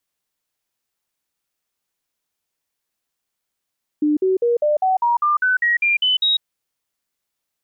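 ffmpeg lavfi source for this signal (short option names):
-f lavfi -i "aevalsrc='0.2*clip(min(mod(t,0.2),0.15-mod(t,0.2))/0.005,0,1)*sin(2*PI*299*pow(2,floor(t/0.2)/3)*mod(t,0.2))':d=2.4:s=44100"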